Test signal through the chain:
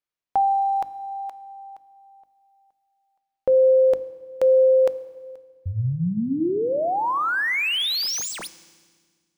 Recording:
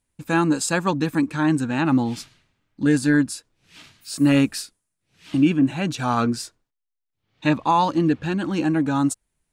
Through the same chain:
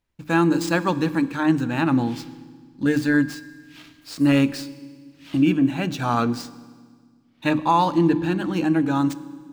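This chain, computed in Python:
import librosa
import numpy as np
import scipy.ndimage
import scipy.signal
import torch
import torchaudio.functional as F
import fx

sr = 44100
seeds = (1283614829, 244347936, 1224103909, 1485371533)

y = scipy.signal.medfilt(x, 5)
y = fx.hum_notches(y, sr, base_hz=50, count=6)
y = fx.rev_fdn(y, sr, rt60_s=1.6, lf_ratio=1.55, hf_ratio=1.0, size_ms=18.0, drr_db=15.0)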